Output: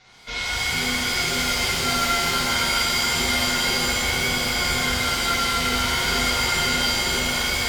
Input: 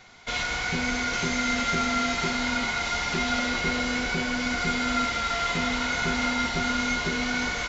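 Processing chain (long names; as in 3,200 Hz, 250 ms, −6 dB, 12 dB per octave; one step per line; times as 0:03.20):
bit reduction 10 bits
low-pass with resonance 5,100 Hz, resonance Q 1.7
echo with a time of its own for lows and highs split 810 Hz, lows 626 ms, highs 255 ms, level −5.5 dB
reverb with rising layers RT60 1.2 s, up +7 semitones, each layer −2 dB, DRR −5 dB
level −6.5 dB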